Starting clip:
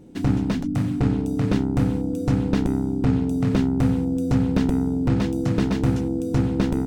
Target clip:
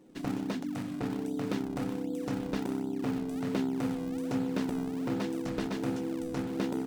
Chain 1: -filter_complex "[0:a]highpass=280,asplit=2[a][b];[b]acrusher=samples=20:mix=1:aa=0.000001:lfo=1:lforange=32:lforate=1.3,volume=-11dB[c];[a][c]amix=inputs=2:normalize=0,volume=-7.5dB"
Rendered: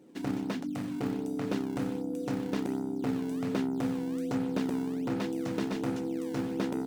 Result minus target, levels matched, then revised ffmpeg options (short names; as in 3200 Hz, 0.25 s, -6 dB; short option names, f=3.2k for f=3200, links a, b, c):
decimation with a swept rate: distortion -11 dB
-filter_complex "[0:a]highpass=280,asplit=2[a][b];[b]acrusher=samples=56:mix=1:aa=0.000001:lfo=1:lforange=89.6:lforate=1.3,volume=-11dB[c];[a][c]amix=inputs=2:normalize=0,volume=-7.5dB"